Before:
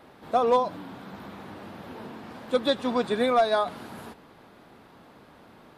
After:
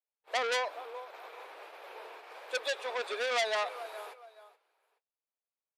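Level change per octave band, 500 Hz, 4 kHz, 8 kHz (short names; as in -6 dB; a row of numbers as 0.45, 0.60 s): -10.0 dB, -2.0 dB, n/a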